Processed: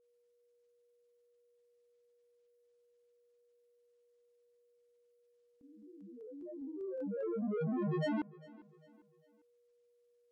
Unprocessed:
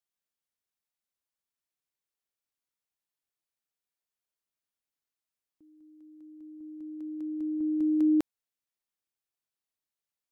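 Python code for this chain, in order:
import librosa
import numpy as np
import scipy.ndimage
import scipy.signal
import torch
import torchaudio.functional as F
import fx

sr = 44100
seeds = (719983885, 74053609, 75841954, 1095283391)

p1 = fx.env_lowpass_down(x, sr, base_hz=1200.0, full_db=-31.5)
p2 = 10.0 ** (-33.5 / 20.0) * np.tanh(p1 / 10.0 ** (-33.5 / 20.0))
p3 = fx.granulator(p2, sr, seeds[0], grain_ms=100.0, per_s=20.0, spray_ms=20.0, spread_st=12)
p4 = p3 + 10.0 ** (-72.0 / 20.0) * np.sin(2.0 * np.pi * 480.0 * np.arange(len(p3)) / sr)
p5 = p4 + fx.echo_feedback(p4, sr, ms=400, feedback_pct=41, wet_db=-21.5, dry=0)
y = p5 * librosa.db_to_amplitude(1.5)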